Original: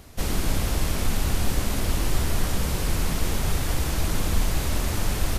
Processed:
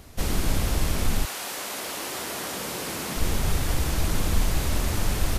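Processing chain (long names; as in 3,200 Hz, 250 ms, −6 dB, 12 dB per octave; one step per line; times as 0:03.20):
0:01.24–0:03.16: high-pass filter 690 Hz → 210 Hz 12 dB per octave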